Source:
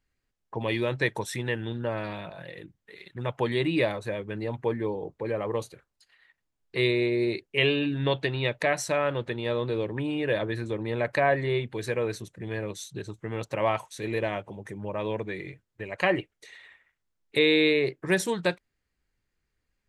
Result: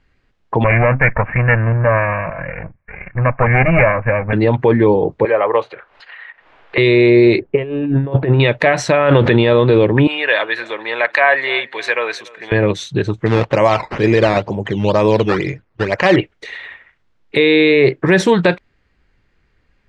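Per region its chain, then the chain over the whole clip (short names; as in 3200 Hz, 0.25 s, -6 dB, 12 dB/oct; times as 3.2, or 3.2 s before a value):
0.64–4.33 minimum comb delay 1.8 ms + steep low-pass 2500 Hz 96 dB/oct + bell 400 Hz -13 dB 0.66 oct
5.25–6.78 three-band isolator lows -22 dB, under 470 Hz, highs -24 dB, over 3100 Hz + upward compressor, threshold -44 dBFS
7.38–8.4 LPF 1100 Hz + negative-ratio compressor -33 dBFS, ratio -0.5
8.92–9.53 LPF 8300 Hz + fast leveller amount 70%
10.07–12.52 HPF 1000 Hz + feedback echo 0.29 s, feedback 39%, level -22.5 dB
13.26–16.16 decimation with a swept rate 10× 2.1 Hz + air absorption 68 m
whole clip: LPF 3300 Hz 12 dB/oct; maximiser +20.5 dB; gain -1 dB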